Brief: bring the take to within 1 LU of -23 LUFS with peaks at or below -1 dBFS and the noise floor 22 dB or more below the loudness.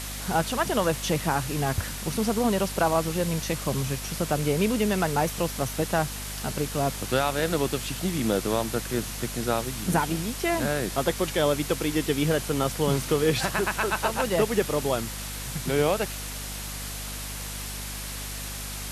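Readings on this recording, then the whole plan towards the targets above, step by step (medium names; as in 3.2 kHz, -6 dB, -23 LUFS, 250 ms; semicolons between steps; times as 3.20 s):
hum 50 Hz; highest harmonic 250 Hz; hum level -36 dBFS; noise floor -35 dBFS; noise floor target -49 dBFS; loudness -27.0 LUFS; peak level -10.0 dBFS; loudness target -23.0 LUFS
-> de-hum 50 Hz, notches 5; noise print and reduce 14 dB; trim +4 dB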